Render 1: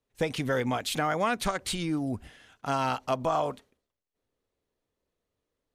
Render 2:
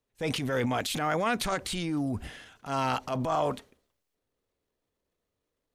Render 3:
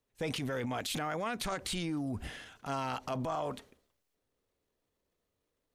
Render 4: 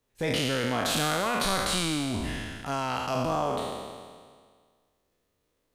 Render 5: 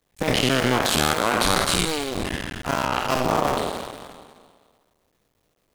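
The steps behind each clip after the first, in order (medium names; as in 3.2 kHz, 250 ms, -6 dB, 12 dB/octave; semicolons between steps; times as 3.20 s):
transient shaper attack -8 dB, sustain +8 dB
compression, threshold -32 dBFS, peak gain reduction 9 dB
spectral sustain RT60 1.79 s; trim +4 dB
cycle switcher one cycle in 2, muted; trim +9 dB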